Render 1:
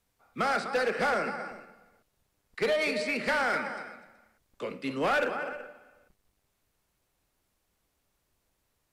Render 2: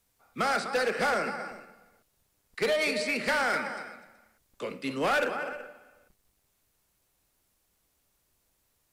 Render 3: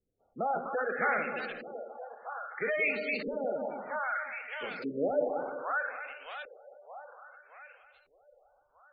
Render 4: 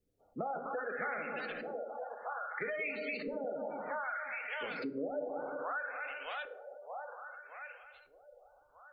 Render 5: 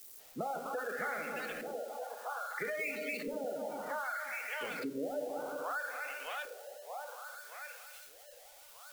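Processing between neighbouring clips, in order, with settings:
treble shelf 5 kHz +7.5 dB
two-band feedback delay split 600 Hz, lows 170 ms, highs 620 ms, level -4 dB; LFO low-pass saw up 0.62 Hz 380–4200 Hz; spectral gate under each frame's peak -20 dB strong; trim -6.5 dB
FDN reverb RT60 0.58 s, low-frequency decay 0.85×, high-frequency decay 0.6×, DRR 10 dB; compression 4:1, threshold -40 dBFS, peak gain reduction 14.5 dB; trim +3 dB
zero-crossing glitches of -42 dBFS

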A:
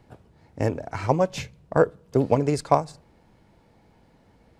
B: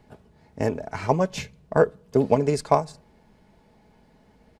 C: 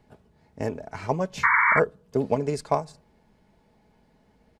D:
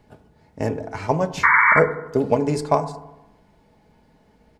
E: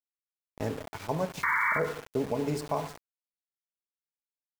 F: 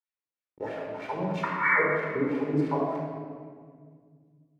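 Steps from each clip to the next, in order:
band-stop 1.3 kHz, Q 26; comb 4.7 ms, depth 39%
painted sound noise, 1.43–1.80 s, 890–2300 Hz -15 dBFS; trim -4.5 dB
FDN reverb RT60 0.97 s, low-frequency decay 1.1×, high-frequency decay 0.3×, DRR 9.5 dB; trim +4.5 dB
small samples zeroed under -29.5 dBFS; peak limiter -9 dBFS, peak gain reduction 7.5 dB; trim -8.5 dB
LFO band-pass sine 3.1 Hz 230–2400 Hz; simulated room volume 2800 m³, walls mixed, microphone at 4.4 m; trim +2.5 dB

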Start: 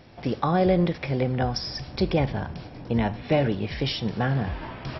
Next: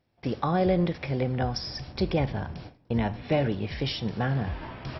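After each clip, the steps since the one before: gate with hold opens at -29 dBFS; peaking EQ 86 Hz +2.5 dB; trim -3 dB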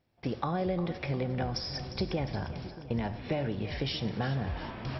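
compression, threshold -26 dBFS, peak gain reduction 7.5 dB; two-band feedback delay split 430 Hz, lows 633 ms, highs 353 ms, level -13 dB; reverberation RT60 0.50 s, pre-delay 30 ms, DRR 17.5 dB; trim -1.5 dB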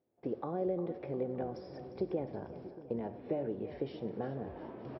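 band-pass filter 410 Hz, Q 1.7; delay 925 ms -21 dB; trim +1 dB

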